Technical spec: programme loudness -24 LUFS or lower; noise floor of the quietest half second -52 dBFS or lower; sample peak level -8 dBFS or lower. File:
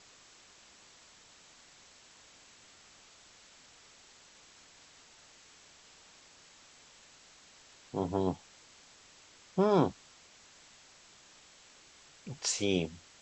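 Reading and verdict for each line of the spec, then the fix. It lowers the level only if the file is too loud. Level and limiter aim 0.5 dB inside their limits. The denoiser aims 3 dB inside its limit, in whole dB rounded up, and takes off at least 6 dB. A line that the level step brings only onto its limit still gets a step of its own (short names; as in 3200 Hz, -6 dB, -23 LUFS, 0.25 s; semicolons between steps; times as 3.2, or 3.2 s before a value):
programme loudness -32.5 LUFS: OK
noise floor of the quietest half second -59 dBFS: OK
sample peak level -12.5 dBFS: OK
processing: none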